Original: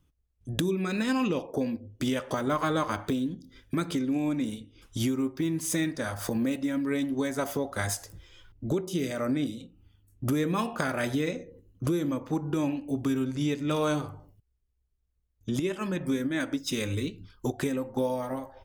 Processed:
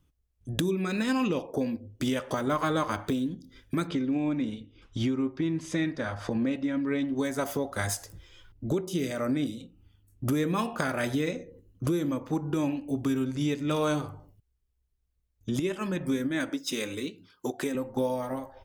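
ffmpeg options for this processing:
-filter_complex "[0:a]asettb=1/sr,asplit=3[a][b][c];[a]atrim=end=3.874[d];[b]atrim=start=3.87:end=7.16,asetpts=PTS-STARTPTS,afade=t=in:d=0.004:c=qsin,afade=t=out:st=3.286:d=0.004:c=qsin,lowpass=3.9k[e];[c]atrim=start=7.156[f];[d][e]acrossfade=d=0.004:c1=hsin:c2=qsin[g];[g][f]acrossfade=d=0.004:c1=qsin:c2=hsin,asettb=1/sr,asplit=3[h][i][j];[h]atrim=end=16.494[k];[i]atrim=start=16.49:end=17.75,asetpts=PTS-STARTPTS,afade=t=in:d=0.004:c=qsin,afade=t=out:st=1.256:d=0.004:c=qsin,highpass=240[l];[j]atrim=start=17.746[m];[k][l]acrossfade=d=0.004:c1=hsin:c2=qsin[n];[n][m]acrossfade=d=0.004:c1=qsin:c2=hsin"

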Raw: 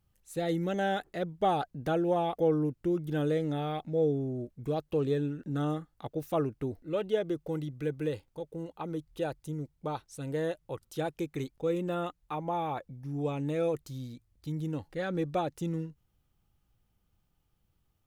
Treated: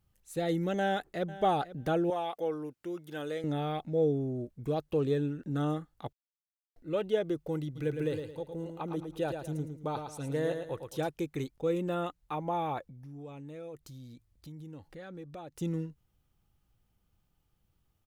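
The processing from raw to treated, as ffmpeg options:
-filter_complex "[0:a]asplit=2[a][b];[b]afade=t=in:st=0.79:d=0.01,afade=t=out:st=1.33:d=0.01,aecho=0:1:490|980:0.158489|0.0158489[c];[a][c]amix=inputs=2:normalize=0,asettb=1/sr,asplit=3[d][e][f];[d]atrim=end=2.104[g];[e]atrim=start=2.1:end=3.44,asetpts=PTS-STARTPTS,afade=t=in:d=0.004:c=qsin,afade=t=out:st=1.336:d=0.004:c=qsin,highpass=f=870:p=1[h];[f]atrim=start=3.436[i];[g][h]acrossfade=d=0.004:c1=hsin:c2=qsin[j];[j][i]acrossfade=d=0.004:c1=qsin:c2=hsin,asplit=3[k][l][m];[k]afade=t=out:st=7.75:d=0.02[n];[l]aecho=1:1:110|220|330|440:0.473|0.161|0.0547|0.0186,afade=t=in:st=7.75:d=0.02,afade=t=out:st=11.06:d=0.02[o];[m]afade=t=in:st=11.06:d=0.02[p];[n][o][p]amix=inputs=3:normalize=0,asettb=1/sr,asplit=3[q][r][s];[q]atrim=end=12.854[t];[r]atrim=start=12.85:end=15.57,asetpts=PTS-STARTPTS,afade=t=in:d=0.004:c=qsin,afade=t=out:st=2.716:d=0.004:c=qsin,acompressor=threshold=-48dB:ratio=2.5:attack=3.2:release=140:knee=1:detection=peak[u];[s]atrim=start=15.566[v];[t][u]acrossfade=d=0.004:c1=hsin:c2=qsin[w];[w][v]acrossfade=d=0.004:c1=qsin:c2=hsin,asplit=3[x][y][z];[x]atrim=end=6.13,asetpts=PTS-STARTPTS,afade=t=out:st=6.126:d=0.004:c=hsin[aa];[y]atrim=start=6.13:end=6.76,asetpts=PTS-STARTPTS,volume=0[ab];[z]atrim=start=6.76,asetpts=PTS-STARTPTS,afade=t=in:d=0.004:c=hsin[ac];[aa][ab][ac]concat=n=3:v=0:a=1"

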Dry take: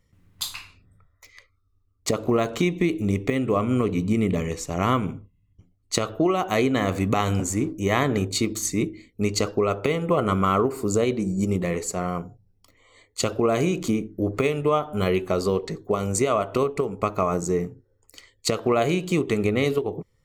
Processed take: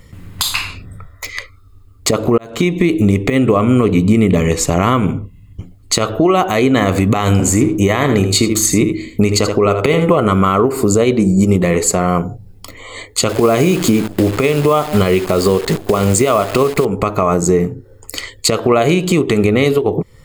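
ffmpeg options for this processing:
-filter_complex "[0:a]asettb=1/sr,asplit=3[a][b][c];[a]atrim=end=7.344[d];[b]atrim=start=7.34:end=10.16,asetpts=PTS-STARTPTS,afade=t=in:d=0.004:c=qsin,afade=t=out:st=2.816:d=0.004:c=qsin,aecho=1:1:79:0.299,atrim=end_sample=124362[e];[c]atrim=start=10.156[f];[d][e]acrossfade=d=0.004:c1=hsin:c2=qsin[g];[g][f]acrossfade=d=0.004:c1=qsin:c2=hsin,asettb=1/sr,asplit=3[h][i][j];[h]atrim=end=13.294[k];[i]atrim=start=13.29:end=16.85,asetpts=PTS-STARTPTS,afade=t=in:d=0.004:c=qsin,afade=t=out:st=3.556:d=0.004:c=qsin,acrusher=bits=7:dc=4:mix=0:aa=0.000001[l];[j]atrim=start=16.846[m];[k][l]acrossfade=d=0.004:c1=hsin:c2=qsin[n];[n][m]acrossfade=d=0.004:c1=qsin:c2=hsin,asplit=2[o][p];[o]atrim=end=2.38,asetpts=PTS-STARTPTS,afade=t=out:st=2.376:d=0.004:c=hsin[q];[p]atrim=start=2.38,asetpts=PTS-STARTPTS,afade=t=in:d=0.68[r];[q][r]concat=n=2:v=0:a=1,bandreject=f=5.8k:w=8.6,acompressor=threshold=-37dB:ratio=3,alimiter=level_in=25.5dB:limit=-1dB:release=50:level=0:latency=1,volume=-1.5dB"

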